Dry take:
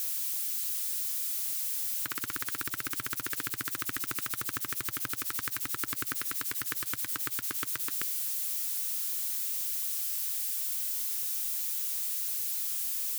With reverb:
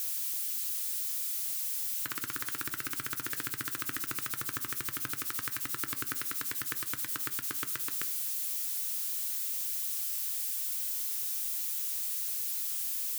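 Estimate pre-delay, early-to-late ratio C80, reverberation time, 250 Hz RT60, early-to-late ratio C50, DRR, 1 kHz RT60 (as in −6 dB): 6 ms, 23.0 dB, 0.45 s, 0.70 s, 19.0 dB, 11.0 dB, 0.45 s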